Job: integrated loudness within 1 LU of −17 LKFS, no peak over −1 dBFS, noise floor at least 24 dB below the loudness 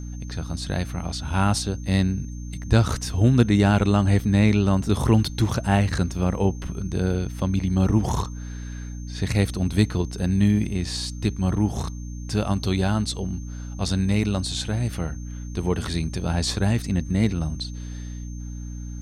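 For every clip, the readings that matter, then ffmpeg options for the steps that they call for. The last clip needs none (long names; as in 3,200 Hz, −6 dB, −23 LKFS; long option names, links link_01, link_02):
mains hum 60 Hz; hum harmonics up to 300 Hz; level of the hum −31 dBFS; interfering tone 6,300 Hz; level of the tone −48 dBFS; integrated loudness −23.5 LKFS; sample peak −5.5 dBFS; target loudness −17.0 LKFS
→ -af "bandreject=frequency=60:width_type=h:width=4,bandreject=frequency=120:width_type=h:width=4,bandreject=frequency=180:width_type=h:width=4,bandreject=frequency=240:width_type=h:width=4,bandreject=frequency=300:width_type=h:width=4"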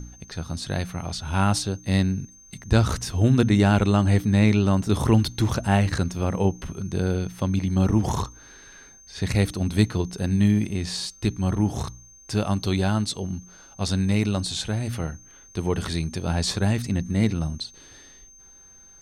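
mains hum none found; interfering tone 6,300 Hz; level of the tone −48 dBFS
→ -af "bandreject=frequency=6300:width=30"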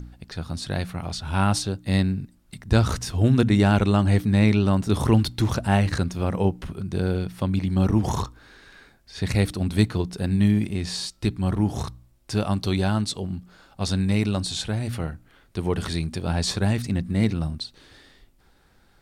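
interfering tone none found; integrated loudness −24.0 LKFS; sample peak −6.0 dBFS; target loudness −17.0 LKFS
→ -af "volume=7dB,alimiter=limit=-1dB:level=0:latency=1"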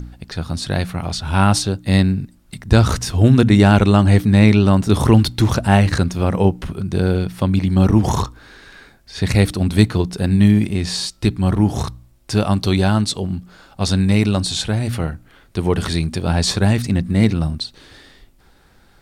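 integrated loudness −17.0 LKFS; sample peak −1.0 dBFS; background noise floor −51 dBFS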